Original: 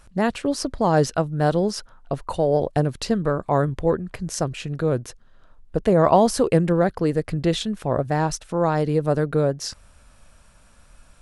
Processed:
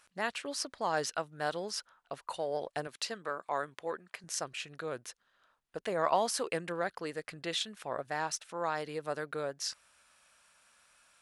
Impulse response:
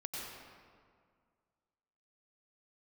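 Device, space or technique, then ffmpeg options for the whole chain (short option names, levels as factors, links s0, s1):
filter by subtraction: -filter_complex "[0:a]asplit=2[s0][s1];[s1]lowpass=2000,volume=-1[s2];[s0][s2]amix=inputs=2:normalize=0,asettb=1/sr,asplit=3[s3][s4][s5];[s3]atrim=end=2.874[s6];[s4]atrim=start=2.87:end=4.24,asetpts=PTS-STARTPTS,afade=t=in:d=0.004:c=qsin,afade=t=out:st=1.366:d=0.004:c=qsin,highpass=f=270:p=1[s7];[s5]atrim=start=4.236[s8];[s6][s7]acrossfade=d=0.004:c1=hsin:c2=qsin[s9];[s9][s8]acrossfade=d=0.004:c1=qsin:c2=hsin,volume=0.473"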